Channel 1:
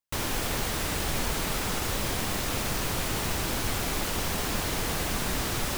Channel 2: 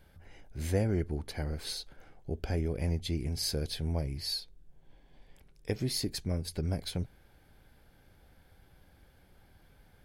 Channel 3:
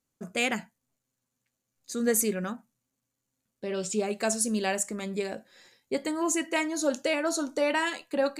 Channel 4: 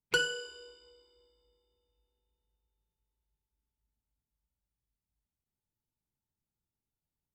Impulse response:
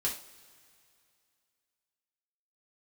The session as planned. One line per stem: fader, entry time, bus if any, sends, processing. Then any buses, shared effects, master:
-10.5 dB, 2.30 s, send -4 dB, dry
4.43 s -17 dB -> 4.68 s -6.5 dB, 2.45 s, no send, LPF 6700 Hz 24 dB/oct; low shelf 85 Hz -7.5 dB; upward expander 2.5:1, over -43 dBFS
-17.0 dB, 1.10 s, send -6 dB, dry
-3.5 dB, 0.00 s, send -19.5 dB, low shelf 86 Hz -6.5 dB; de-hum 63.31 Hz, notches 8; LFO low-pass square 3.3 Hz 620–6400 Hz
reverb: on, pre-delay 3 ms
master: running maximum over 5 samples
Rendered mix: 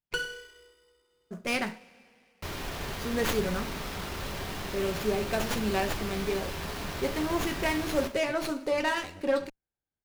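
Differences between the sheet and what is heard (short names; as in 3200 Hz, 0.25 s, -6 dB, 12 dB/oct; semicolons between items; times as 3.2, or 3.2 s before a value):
stem 3 -17.0 dB -> -5.0 dB; stem 4: missing LFO low-pass square 3.3 Hz 620–6400 Hz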